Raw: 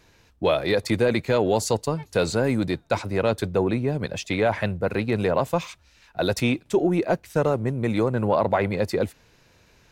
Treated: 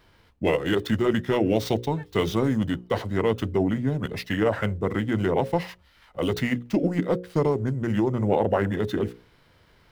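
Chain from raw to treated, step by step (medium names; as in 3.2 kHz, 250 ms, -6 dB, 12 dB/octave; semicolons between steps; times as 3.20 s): median filter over 5 samples; formant shift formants -4 st; hum notches 60/120/180/240/300/360/420/480/540 Hz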